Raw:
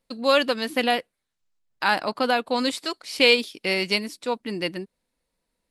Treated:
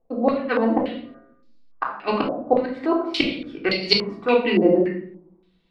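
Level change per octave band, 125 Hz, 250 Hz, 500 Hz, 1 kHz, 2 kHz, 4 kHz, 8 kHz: +7.5 dB, +7.0 dB, +3.5 dB, 0.0 dB, -4.0 dB, -2.0 dB, under -10 dB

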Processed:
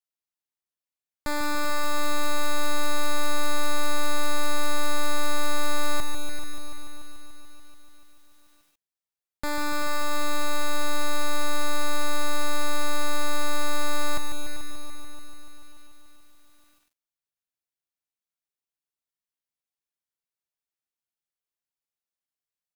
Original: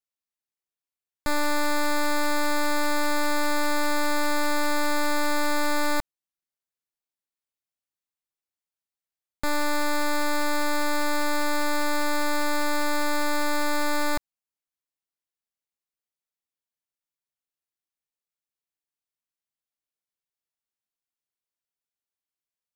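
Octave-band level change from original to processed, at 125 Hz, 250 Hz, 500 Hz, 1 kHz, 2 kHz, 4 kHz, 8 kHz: no reading, -5.5 dB, -3.0 dB, -2.5 dB, -4.0 dB, +0.5 dB, +0.5 dB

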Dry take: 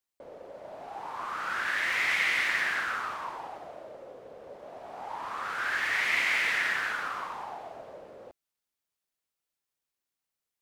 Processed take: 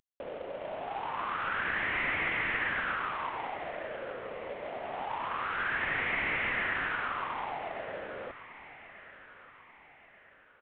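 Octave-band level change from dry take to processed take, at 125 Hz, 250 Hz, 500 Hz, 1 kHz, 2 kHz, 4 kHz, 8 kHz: no reading, +5.5 dB, +4.0 dB, +1.0 dB, -3.0 dB, -6.5 dB, under -35 dB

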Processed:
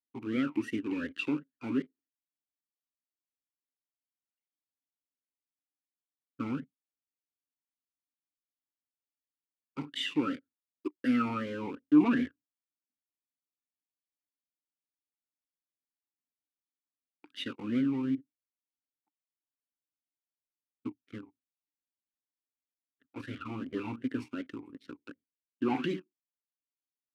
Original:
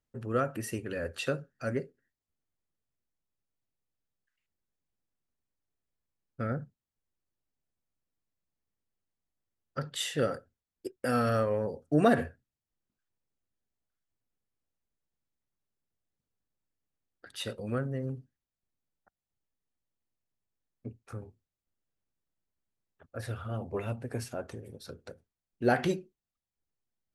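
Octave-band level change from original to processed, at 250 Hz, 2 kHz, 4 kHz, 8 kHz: +4.5 dB, -3.0 dB, 0.0 dB, under -10 dB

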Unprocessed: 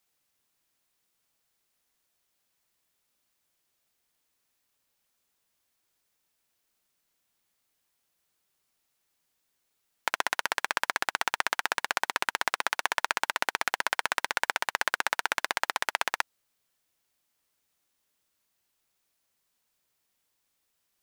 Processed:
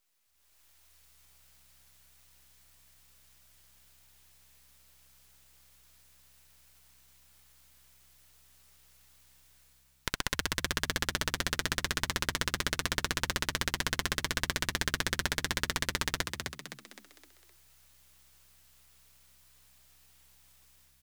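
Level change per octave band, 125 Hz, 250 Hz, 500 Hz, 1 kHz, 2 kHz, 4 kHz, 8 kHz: no reading, +9.5 dB, -2.0 dB, -8.5 dB, -5.0 dB, +1.0 dB, +2.0 dB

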